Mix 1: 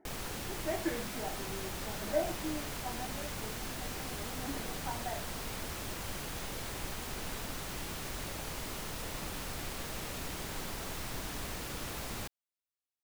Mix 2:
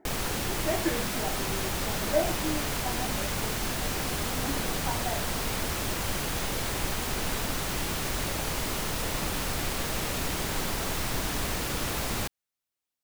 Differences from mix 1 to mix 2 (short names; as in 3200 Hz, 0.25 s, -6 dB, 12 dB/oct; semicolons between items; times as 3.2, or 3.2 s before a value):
speech +5.5 dB; background +9.5 dB